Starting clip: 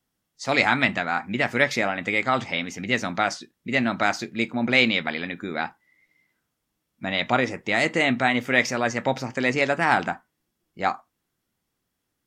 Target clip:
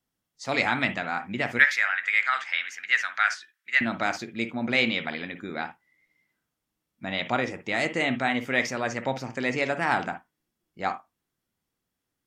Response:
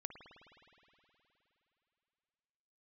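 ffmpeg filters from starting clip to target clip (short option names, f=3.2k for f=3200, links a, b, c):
-filter_complex "[0:a]asettb=1/sr,asplit=3[a][b][c];[a]atrim=end=1.594[d];[b]atrim=start=1.59:end=3.81,asetpts=PTS-STARTPTS,afade=t=in:d=0.004:c=qsin,afade=t=out:st=2.216:d=0.004:c=qsin,highpass=f=1.6k:t=q:w=3.8[e];[c]atrim=start=3.806[f];[d][e]acrossfade=d=0.004:c1=hsin:c2=qsin[g];[g][f]acrossfade=d=0.004:c1=qsin:c2=hsin[h];[1:a]atrim=start_sample=2205,atrim=end_sample=3528[i];[h][i]afir=irnorm=-1:irlink=0"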